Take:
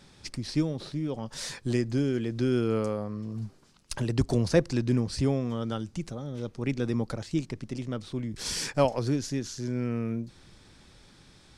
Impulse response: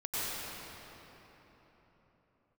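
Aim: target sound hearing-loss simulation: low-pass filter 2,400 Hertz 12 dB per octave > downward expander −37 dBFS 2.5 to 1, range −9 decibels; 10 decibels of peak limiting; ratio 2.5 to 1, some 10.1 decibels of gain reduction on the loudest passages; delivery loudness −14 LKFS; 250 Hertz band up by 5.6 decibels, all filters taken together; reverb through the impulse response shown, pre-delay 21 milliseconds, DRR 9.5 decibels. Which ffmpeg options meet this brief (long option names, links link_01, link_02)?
-filter_complex "[0:a]equalizer=frequency=250:width_type=o:gain=6.5,acompressor=threshold=-31dB:ratio=2.5,alimiter=level_in=2.5dB:limit=-24dB:level=0:latency=1,volume=-2.5dB,asplit=2[link_01][link_02];[1:a]atrim=start_sample=2205,adelay=21[link_03];[link_02][link_03]afir=irnorm=-1:irlink=0,volume=-16.5dB[link_04];[link_01][link_04]amix=inputs=2:normalize=0,lowpass=2400,agate=range=-9dB:threshold=-37dB:ratio=2.5,volume=22.5dB"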